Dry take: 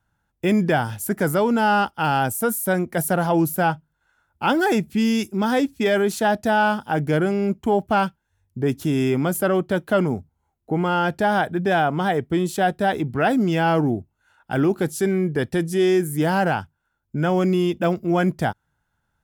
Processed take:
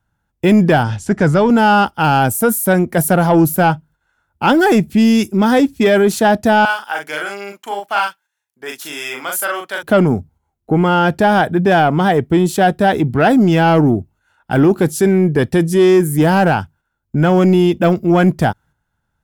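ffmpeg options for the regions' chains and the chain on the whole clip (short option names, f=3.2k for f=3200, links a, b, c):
-filter_complex "[0:a]asettb=1/sr,asplit=3[a][b][c];[a]atrim=end=0.834[d];[b]atrim=start=0.83:end=1.5,asetpts=PTS-STARTPTS,afade=t=in:d=0.004:c=qsin,afade=t=out:st=0.666:d=0.004:c=qsin,asubboost=boost=11:cutoff=150,lowpass=f=6.9k:w=0.5412,lowpass=f=6.9k:w=1.3066[e];[c]atrim=start=1.496[f];[d][e]acrossfade=d=0.004:c1=hsin:c2=qsin[g];[g][f]acrossfade=d=0.004:c1=qsin:c2=hsin,asettb=1/sr,asplit=3[h][i][j];[h]atrim=end=6.654[k];[i]atrim=start=6.65:end=9.83,asetpts=PTS-STARTPTS,afade=t=in:d=0.004:c=qsin,afade=t=out:st=3.176:d=0.004:c=qsin,highpass=1.2k,asplit=2[l][m];[m]adelay=40,volume=-3dB[n];[l][n]amix=inputs=2:normalize=0,atrim=end_sample=140238[o];[j]atrim=start=9.826[p];[k][o]acrossfade=d=0.004:c1=hsin:c2=qsin[q];[q][p]acrossfade=d=0.004:c1=qsin:c2=hsin,agate=range=-7dB:threshold=-50dB:ratio=16:detection=peak,lowshelf=f=450:g=3,acontrast=89"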